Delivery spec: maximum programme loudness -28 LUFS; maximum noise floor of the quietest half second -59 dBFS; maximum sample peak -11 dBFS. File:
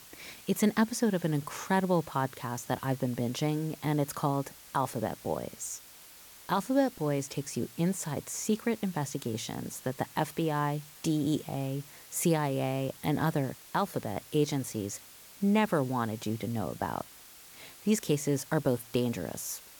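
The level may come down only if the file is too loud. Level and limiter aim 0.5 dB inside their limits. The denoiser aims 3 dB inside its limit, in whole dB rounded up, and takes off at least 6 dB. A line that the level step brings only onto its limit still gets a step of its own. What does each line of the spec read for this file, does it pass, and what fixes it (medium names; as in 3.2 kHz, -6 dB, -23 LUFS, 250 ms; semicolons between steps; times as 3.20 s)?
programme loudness -31.5 LUFS: pass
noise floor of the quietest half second -52 dBFS: fail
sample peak -15.0 dBFS: pass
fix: noise reduction 10 dB, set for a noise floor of -52 dBFS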